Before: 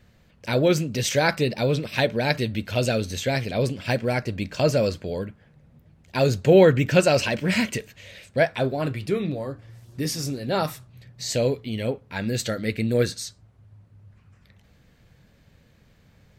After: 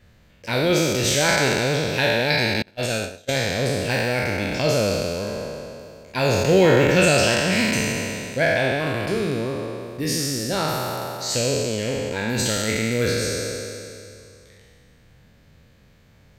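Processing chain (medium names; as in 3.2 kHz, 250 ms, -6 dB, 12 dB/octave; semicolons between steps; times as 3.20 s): spectral sustain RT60 2.48 s; peaking EQ 150 Hz -2 dB 1.5 oct; 2.62–3.29 s: gate -18 dBFS, range -33 dB; dynamic bell 650 Hz, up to -5 dB, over -26 dBFS, Q 0.77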